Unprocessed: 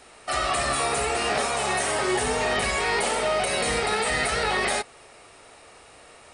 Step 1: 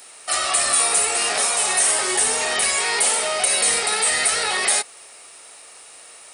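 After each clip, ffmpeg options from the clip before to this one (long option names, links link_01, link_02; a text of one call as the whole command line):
ffmpeg -i in.wav -af "aemphasis=mode=production:type=riaa" out.wav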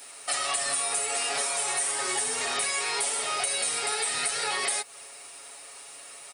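ffmpeg -i in.wav -af "aecho=1:1:7.2:0.73,acompressor=threshold=-22dB:ratio=6,acrusher=bits=8:mix=0:aa=0.5,volume=-3.5dB" out.wav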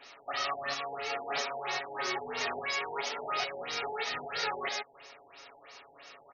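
ffmpeg -i in.wav -af "afftfilt=real='re*lt(b*sr/1024,900*pow(6800/900,0.5+0.5*sin(2*PI*3*pts/sr)))':imag='im*lt(b*sr/1024,900*pow(6800/900,0.5+0.5*sin(2*PI*3*pts/sr)))':win_size=1024:overlap=0.75,volume=-1.5dB" out.wav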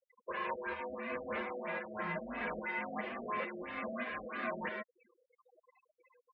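ffmpeg -i in.wav -af "highpass=160,afftfilt=real='re*gte(hypot(re,im),0.0112)':imag='im*gte(hypot(re,im),0.0112)':win_size=1024:overlap=0.75,highpass=frequency=270:width_type=q:width=0.5412,highpass=frequency=270:width_type=q:width=1.307,lowpass=frequency=2700:width_type=q:width=0.5176,lowpass=frequency=2700:width_type=q:width=0.7071,lowpass=frequency=2700:width_type=q:width=1.932,afreqshift=-200,volume=-3.5dB" out.wav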